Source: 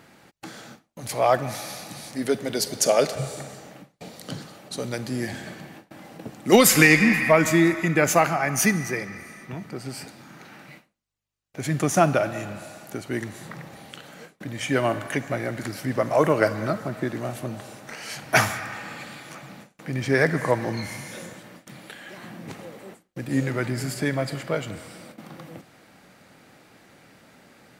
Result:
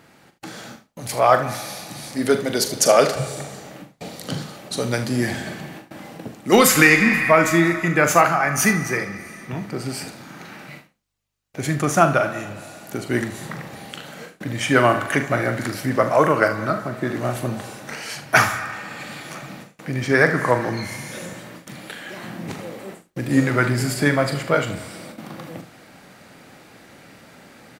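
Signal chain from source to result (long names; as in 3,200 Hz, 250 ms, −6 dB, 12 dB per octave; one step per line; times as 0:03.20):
on a send: ambience of single reflections 41 ms −9.5 dB, 76 ms −13.5 dB
on the sum: dynamic equaliser 1,300 Hz, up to +7 dB, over −39 dBFS, Q 1.7
automatic gain control gain up to 6 dB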